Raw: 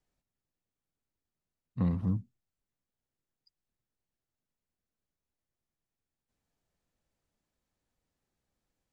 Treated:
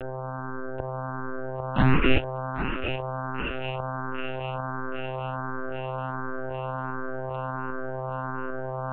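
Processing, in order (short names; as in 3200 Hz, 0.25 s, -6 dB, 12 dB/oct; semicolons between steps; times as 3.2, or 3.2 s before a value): sample sorter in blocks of 16 samples; in parallel at -0.5 dB: upward compressor, threshold -36 dBFS; on the sum: tilt +3 dB/oct; requantised 6-bit, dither none; buzz 100 Hz, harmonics 16, -51 dBFS -3 dB/oct; low shelf 390 Hz +10.5 dB; on a send: thinning echo 0.79 s, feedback 66%, high-pass 270 Hz, level -12.5 dB; on the sum: overdrive pedal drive 30 dB, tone 1300 Hz, clips at 0 dBFS; monotone LPC vocoder at 8 kHz 130 Hz; endless phaser +1.4 Hz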